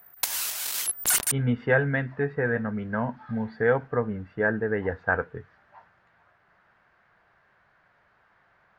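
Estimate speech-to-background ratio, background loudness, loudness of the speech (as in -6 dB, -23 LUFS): -1.5 dB, -25.5 LUFS, -27.0 LUFS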